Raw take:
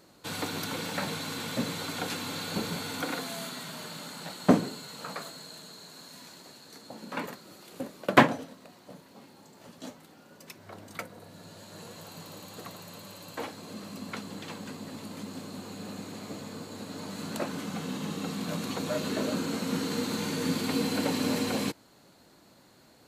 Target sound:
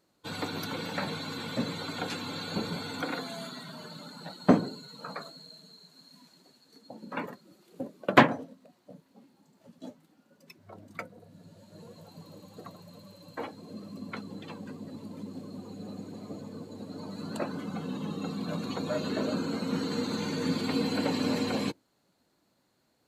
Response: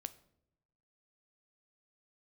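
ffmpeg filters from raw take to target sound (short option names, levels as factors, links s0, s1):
-af "afftdn=nr=14:nf=-41"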